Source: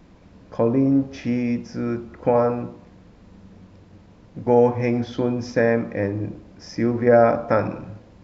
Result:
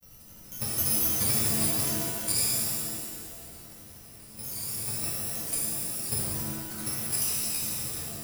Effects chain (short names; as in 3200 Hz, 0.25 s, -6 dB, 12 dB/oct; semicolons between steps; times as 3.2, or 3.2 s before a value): FFT order left unsorted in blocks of 128 samples; high shelf 2800 Hz +7.5 dB; grains, grains 12/s, pitch spread up and down by 3 st; limiter -17.5 dBFS, peak gain reduction 18 dB; level quantiser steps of 13 dB; shimmer reverb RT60 1.8 s, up +7 st, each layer -2 dB, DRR -6.5 dB; gain -3 dB